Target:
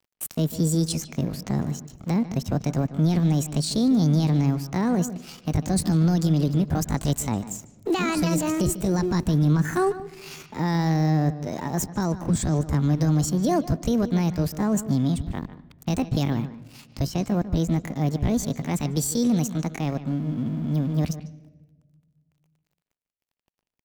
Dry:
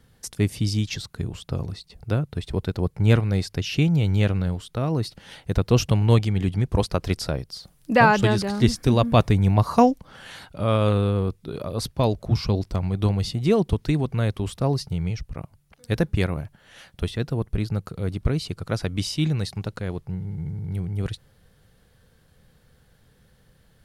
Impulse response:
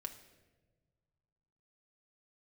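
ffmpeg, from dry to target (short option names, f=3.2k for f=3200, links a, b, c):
-filter_complex "[0:a]acrossover=split=240|3000[a][b][c];[b]acompressor=threshold=-42dB:ratio=1.5[d];[a][d][c]amix=inputs=3:normalize=0,alimiter=limit=-18.5dB:level=0:latency=1:release=23,asetrate=68011,aresample=44100,atempo=0.64842,aeval=exprs='sgn(val(0))*max(abs(val(0))-0.00335,0)':c=same,asplit=2[e][f];[1:a]atrim=start_sample=2205,lowpass=4.4k,adelay=147[g];[f][g]afir=irnorm=-1:irlink=0,volume=-10dB[h];[e][h]amix=inputs=2:normalize=0,volume=4.5dB"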